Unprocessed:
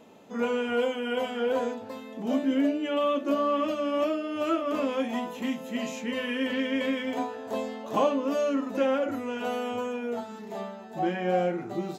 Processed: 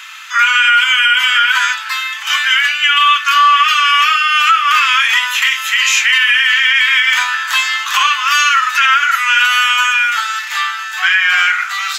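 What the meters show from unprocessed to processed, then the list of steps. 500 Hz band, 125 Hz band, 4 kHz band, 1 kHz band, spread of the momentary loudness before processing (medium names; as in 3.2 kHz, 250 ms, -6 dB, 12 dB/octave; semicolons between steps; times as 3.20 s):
under -20 dB, under -40 dB, +28.0 dB, +19.5 dB, 8 LU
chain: steep high-pass 1.3 kHz 48 dB/octave; treble shelf 6.2 kHz -8.5 dB; band-stop 4 kHz, Q 27; compression 3:1, threshold -41 dBFS, peak gain reduction 8 dB; on a send: feedback echo behind a high-pass 618 ms, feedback 82%, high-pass 4.6 kHz, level -18 dB; on the sum: loudness maximiser +35 dB; trim -1 dB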